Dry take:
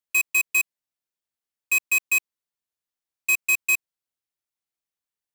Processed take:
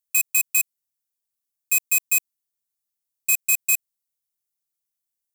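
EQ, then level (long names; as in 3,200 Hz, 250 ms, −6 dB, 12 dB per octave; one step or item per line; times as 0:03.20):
bass and treble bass +6 dB, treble +6 dB
high-shelf EQ 6,200 Hz +11 dB
−7.0 dB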